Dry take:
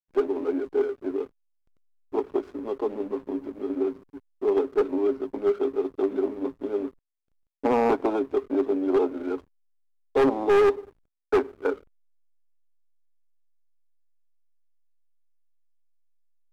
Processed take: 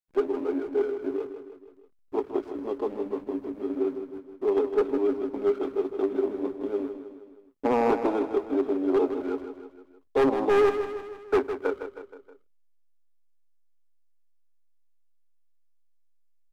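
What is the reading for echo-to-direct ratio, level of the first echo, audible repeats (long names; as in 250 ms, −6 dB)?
−8.0 dB, −9.5 dB, 4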